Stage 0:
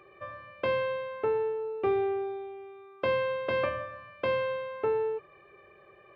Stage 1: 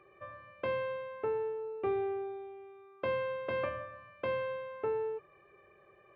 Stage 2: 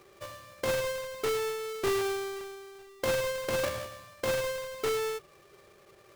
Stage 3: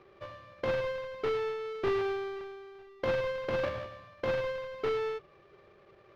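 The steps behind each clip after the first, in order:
bass and treble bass +1 dB, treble −10 dB; level −5.5 dB
each half-wave held at its own peak
high-frequency loss of the air 290 metres

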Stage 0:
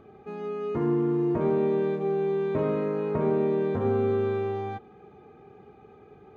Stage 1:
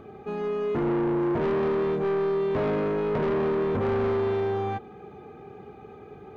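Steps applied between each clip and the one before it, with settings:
soft clipping −29 dBFS, distortion −9 dB
level +6.5 dB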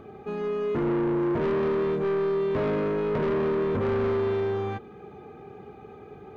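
dynamic equaliser 770 Hz, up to −6 dB, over −49 dBFS, Q 5.3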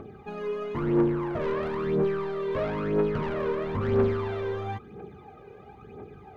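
phase shifter 1 Hz, delay 2.1 ms, feedback 62%
level −3 dB

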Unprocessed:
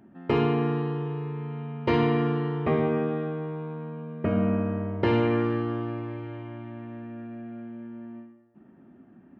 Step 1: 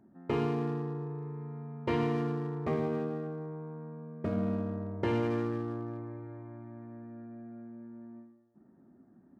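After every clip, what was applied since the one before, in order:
adaptive Wiener filter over 15 samples
level −7 dB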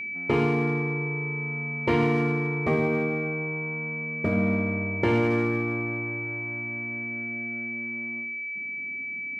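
steady tone 2,300 Hz −38 dBFS
level +7 dB

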